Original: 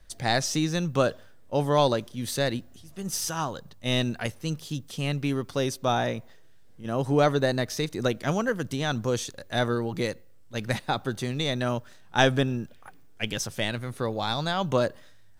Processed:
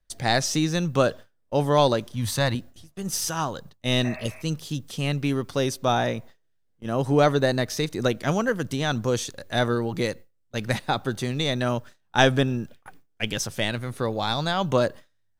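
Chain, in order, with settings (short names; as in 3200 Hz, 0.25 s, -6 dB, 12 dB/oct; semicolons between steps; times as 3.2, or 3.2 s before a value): 4.07–4.39 spectral repair 590–2700 Hz both; gate with hold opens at -36 dBFS; 2.13–2.55 fifteen-band EQ 100 Hz +11 dB, 400 Hz -9 dB, 1000 Hz +9 dB; gain +2.5 dB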